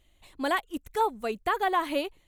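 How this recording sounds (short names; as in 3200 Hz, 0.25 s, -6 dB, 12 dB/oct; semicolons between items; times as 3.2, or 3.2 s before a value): noise floor -65 dBFS; spectral tilt -0.5 dB/oct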